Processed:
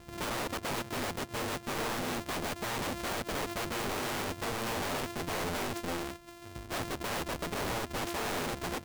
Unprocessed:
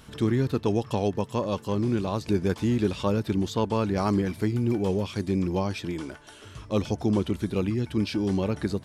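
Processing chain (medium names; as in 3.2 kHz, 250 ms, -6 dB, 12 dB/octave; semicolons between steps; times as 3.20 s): sorted samples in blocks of 128 samples; integer overflow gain 27.5 dB; trim -2 dB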